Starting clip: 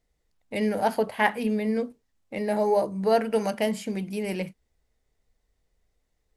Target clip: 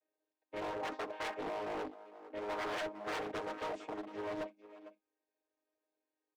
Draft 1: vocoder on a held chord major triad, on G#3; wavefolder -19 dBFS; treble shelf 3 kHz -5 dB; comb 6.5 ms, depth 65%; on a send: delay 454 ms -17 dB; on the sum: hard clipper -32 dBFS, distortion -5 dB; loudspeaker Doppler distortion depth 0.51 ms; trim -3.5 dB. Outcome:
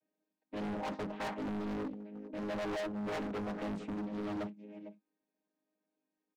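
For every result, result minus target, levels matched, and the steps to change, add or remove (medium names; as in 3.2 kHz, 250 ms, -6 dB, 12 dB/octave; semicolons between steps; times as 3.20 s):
wavefolder: distortion -13 dB; 250 Hz band +7.0 dB
change: wavefolder -25.5 dBFS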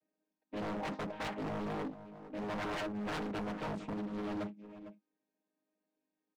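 250 Hz band +6.0 dB
add after wavefolder: steep high-pass 330 Hz 36 dB/octave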